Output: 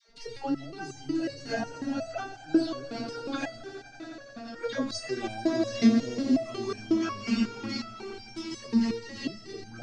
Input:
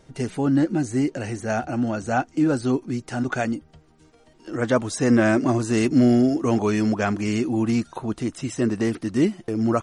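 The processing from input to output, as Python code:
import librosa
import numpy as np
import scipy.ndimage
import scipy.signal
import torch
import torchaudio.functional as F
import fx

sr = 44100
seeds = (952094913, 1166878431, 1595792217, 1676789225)

p1 = fx.low_shelf(x, sr, hz=84.0, db=5.5)
p2 = fx.hum_notches(p1, sr, base_hz=60, count=6)
p3 = fx.env_flanger(p2, sr, rest_ms=5.0, full_db=-14.0)
p4 = fx.lowpass_res(p3, sr, hz=4600.0, q=4.5)
p5 = fx.dispersion(p4, sr, late='lows', ms=87.0, hz=570.0)
p6 = p5 + fx.echo_swell(p5, sr, ms=86, loudest=5, wet_db=-14, dry=0)
p7 = fx.resonator_held(p6, sr, hz=5.5, low_hz=230.0, high_hz=790.0)
y = p7 * 10.0 ** (9.0 / 20.0)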